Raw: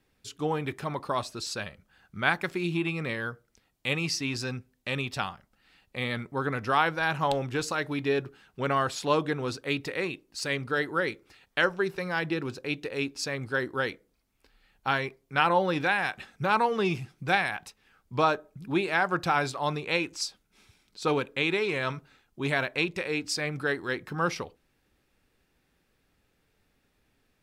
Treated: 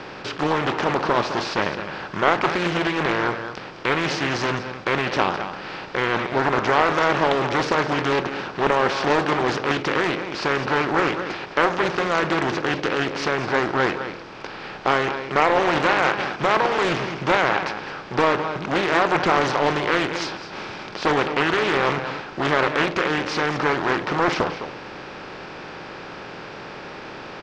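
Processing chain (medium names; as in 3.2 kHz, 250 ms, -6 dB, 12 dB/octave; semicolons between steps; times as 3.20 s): spectral levelling over time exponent 0.4; low-pass 4.9 kHz 24 dB/octave; echo from a far wall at 36 m, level -9 dB; loudspeaker Doppler distortion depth 0.53 ms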